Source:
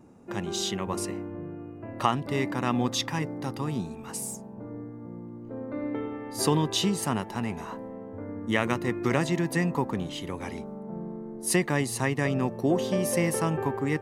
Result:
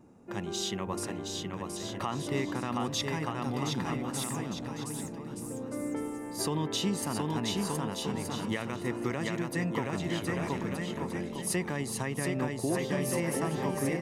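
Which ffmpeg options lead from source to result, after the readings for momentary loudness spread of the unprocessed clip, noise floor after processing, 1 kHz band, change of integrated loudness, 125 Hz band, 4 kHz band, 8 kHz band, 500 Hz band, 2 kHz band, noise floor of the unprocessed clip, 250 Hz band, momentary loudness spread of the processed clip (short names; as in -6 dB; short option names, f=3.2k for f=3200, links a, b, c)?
14 LU, -40 dBFS, -4.5 dB, -4.0 dB, -4.0 dB, -2.5 dB, -2.5 dB, -4.0 dB, -4.5 dB, -42 dBFS, -3.5 dB, 7 LU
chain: -filter_complex "[0:a]asplit=2[a][b];[b]aecho=0:1:720|1224|1577|1824|1997:0.631|0.398|0.251|0.158|0.1[c];[a][c]amix=inputs=2:normalize=0,alimiter=limit=-16.5dB:level=0:latency=1:release=172,volume=-3.5dB"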